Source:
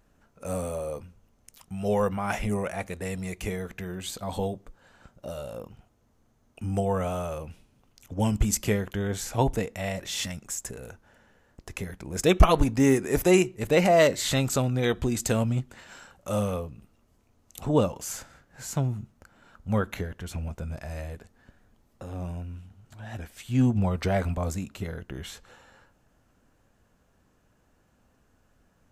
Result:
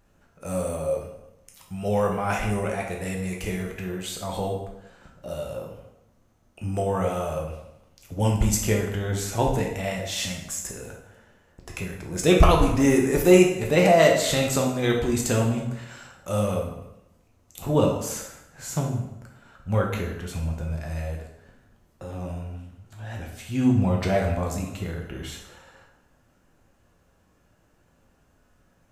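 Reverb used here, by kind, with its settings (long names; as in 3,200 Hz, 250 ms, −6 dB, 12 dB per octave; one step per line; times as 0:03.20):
dense smooth reverb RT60 0.87 s, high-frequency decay 0.8×, DRR −0.5 dB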